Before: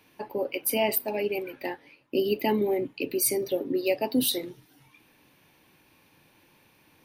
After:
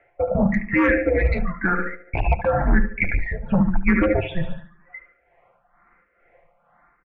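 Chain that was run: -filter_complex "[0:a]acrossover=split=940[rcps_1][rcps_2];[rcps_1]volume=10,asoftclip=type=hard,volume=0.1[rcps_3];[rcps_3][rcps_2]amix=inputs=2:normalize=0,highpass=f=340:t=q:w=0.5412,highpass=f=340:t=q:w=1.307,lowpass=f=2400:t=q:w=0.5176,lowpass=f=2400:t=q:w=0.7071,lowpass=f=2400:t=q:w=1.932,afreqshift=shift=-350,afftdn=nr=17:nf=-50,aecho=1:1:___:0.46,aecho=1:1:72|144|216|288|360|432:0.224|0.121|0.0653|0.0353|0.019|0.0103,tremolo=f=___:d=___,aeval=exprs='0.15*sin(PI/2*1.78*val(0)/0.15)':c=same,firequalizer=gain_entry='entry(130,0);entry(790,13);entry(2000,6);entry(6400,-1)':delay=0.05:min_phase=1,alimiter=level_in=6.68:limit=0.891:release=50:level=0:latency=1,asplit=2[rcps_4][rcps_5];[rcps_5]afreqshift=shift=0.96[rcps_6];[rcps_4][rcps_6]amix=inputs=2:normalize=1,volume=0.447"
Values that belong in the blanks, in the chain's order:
5.8, 2.2, 0.64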